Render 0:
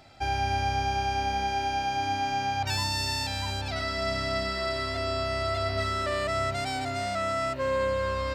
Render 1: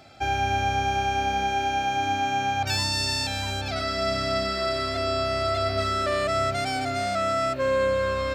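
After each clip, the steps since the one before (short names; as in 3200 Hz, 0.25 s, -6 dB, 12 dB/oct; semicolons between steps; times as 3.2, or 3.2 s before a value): notch comb 950 Hz; gain +4.5 dB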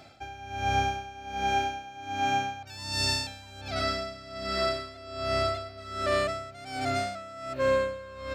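dB-linear tremolo 1.3 Hz, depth 19 dB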